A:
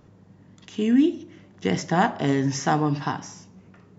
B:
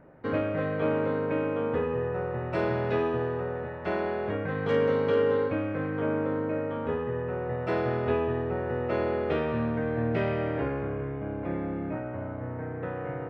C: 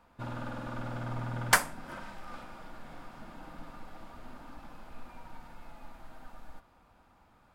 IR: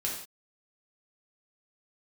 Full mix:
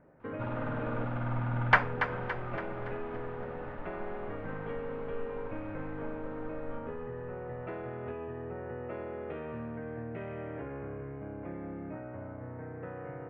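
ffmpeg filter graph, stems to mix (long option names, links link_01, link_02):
-filter_complex "[1:a]acompressor=threshold=-29dB:ratio=6,volume=-7dB,asplit=3[link_01][link_02][link_03];[link_01]atrim=end=1.05,asetpts=PTS-STARTPTS,afade=type=out:start_time=1.046:duration=0.004:curve=hsin[link_04];[link_02]atrim=start=1.05:end=1.82,asetpts=PTS-STARTPTS,volume=0[link_05];[link_03]atrim=start=1.82,asetpts=PTS-STARTPTS,afade=type=in:duration=0.004:curve=hsin[link_06];[link_04][link_05][link_06]concat=n=3:v=0:a=1[link_07];[2:a]adelay=200,volume=2dB,asplit=2[link_08][link_09];[link_09]volume=-9dB,aecho=0:1:283|566|849|1132|1415|1698|1981:1|0.5|0.25|0.125|0.0625|0.0312|0.0156[link_10];[link_07][link_08][link_10]amix=inputs=3:normalize=0,lowpass=frequency=2700:width=0.5412,lowpass=frequency=2700:width=1.3066"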